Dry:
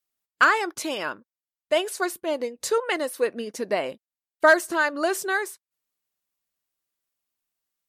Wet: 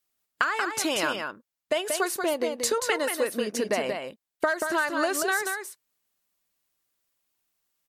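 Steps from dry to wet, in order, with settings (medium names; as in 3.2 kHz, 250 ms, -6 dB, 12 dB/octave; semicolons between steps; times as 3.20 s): dynamic bell 380 Hz, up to -4 dB, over -31 dBFS, Q 0.74; compression 12:1, threshold -27 dBFS, peak gain reduction 15 dB; delay 183 ms -5.5 dB; trim +5 dB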